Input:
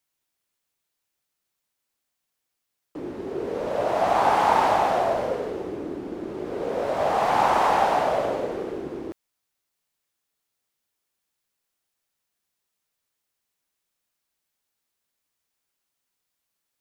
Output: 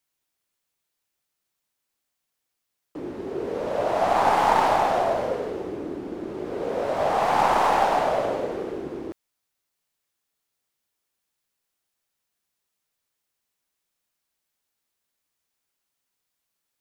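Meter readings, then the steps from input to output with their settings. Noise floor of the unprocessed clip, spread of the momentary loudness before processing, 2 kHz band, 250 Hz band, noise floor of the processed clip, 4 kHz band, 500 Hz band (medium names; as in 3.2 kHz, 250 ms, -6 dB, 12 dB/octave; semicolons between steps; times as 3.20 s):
-81 dBFS, 15 LU, 0.0 dB, 0.0 dB, -81 dBFS, +0.5 dB, 0.0 dB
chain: tracing distortion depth 0.053 ms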